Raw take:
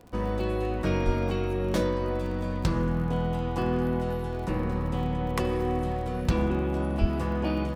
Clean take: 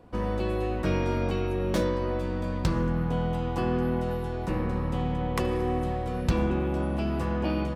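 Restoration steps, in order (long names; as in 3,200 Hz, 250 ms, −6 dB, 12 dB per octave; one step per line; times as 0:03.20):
click removal
high-pass at the plosives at 0:01.05/0:07.00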